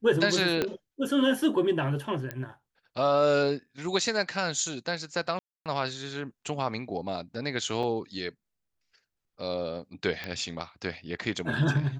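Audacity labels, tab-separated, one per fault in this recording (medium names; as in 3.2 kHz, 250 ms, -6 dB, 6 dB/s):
0.620000	0.620000	pop -12 dBFS
2.310000	2.310000	pop -19 dBFS
5.390000	5.660000	dropout 267 ms
7.830000	7.830000	dropout 4 ms
10.240000	10.240000	pop -20 dBFS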